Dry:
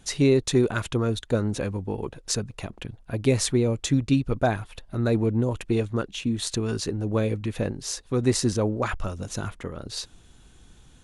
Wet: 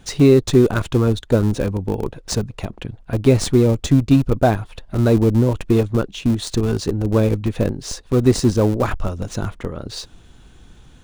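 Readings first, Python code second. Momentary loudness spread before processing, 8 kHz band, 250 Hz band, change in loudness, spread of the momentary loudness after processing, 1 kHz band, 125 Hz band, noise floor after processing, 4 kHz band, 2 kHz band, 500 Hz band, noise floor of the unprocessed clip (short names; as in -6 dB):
12 LU, +0.5 dB, +8.0 dB, +7.5 dB, 13 LU, +6.0 dB, +8.5 dB, -47 dBFS, +2.5 dB, +3.0 dB, +7.5 dB, -53 dBFS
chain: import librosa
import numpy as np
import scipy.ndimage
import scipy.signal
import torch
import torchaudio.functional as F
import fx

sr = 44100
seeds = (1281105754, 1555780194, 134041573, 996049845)

p1 = scipy.signal.medfilt(x, 3)
p2 = fx.high_shelf(p1, sr, hz=5300.0, db=-7.5)
p3 = fx.schmitt(p2, sr, flips_db=-23.0)
p4 = p2 + (p3 * 10.0 ** (-8.0 / 20.0))
p5 = fx.dynamic_eq(p4, sr, hz=2000.0, q=0.9, threshold_db=-45.0, ratio=4.0, max_db=-5)
y = p5 * 10.0 ** (7.0 / 20.0)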